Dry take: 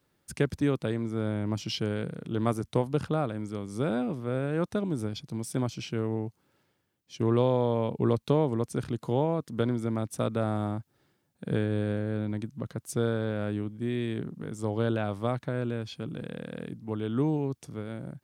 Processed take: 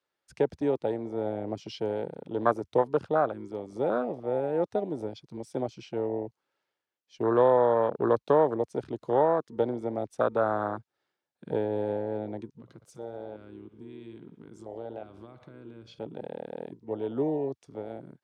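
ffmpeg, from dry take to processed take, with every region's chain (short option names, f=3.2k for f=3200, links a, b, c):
-filter_complex "[0:a]asettb=1/sr,asplit=3[a][b][c];[a]atrim=end=12.564[d];[b]atrim=start=12.56:end=15.99,asetpts=PTS-STARTPTS,afade=t=in:d=0.004:c=qsin,afade=t=out:st=3.426:d=0.004:c=qsin,bandreject=f=1.8k:w=8.9,aecho=1:1:60|120|180|240|300:0.178|0.096|0.0519|0.028|0.0151,atrim=end_sample=151263,acompressor=threshold=-36dB:ratio=4:attack=3.2:release=140:knee=1:detection=peak[e];[c]atrim=start=15.986[f];[d][e]acrossfade=d=0.004:c1=hsin:c2=qsin[g];[g][f]acrossfade=d=0.004:c1=qsin:c2=hsin,afwtdn=0.0316,acrossover=split=410 6900:gain=0.112 1 0.2[h][i][j];[h][i][j]amix=inputs=3:normalize=0,volume=8dB"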